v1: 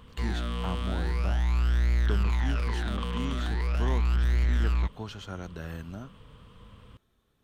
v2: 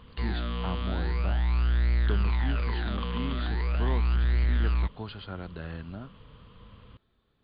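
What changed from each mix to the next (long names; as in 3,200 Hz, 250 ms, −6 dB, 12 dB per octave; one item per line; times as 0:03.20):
master: add linear-phase brick-wall low-pass 4,900 Hz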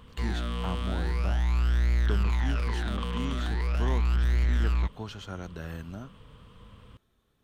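master: remove linear-phase brick-wall low-pass 4,900 Hz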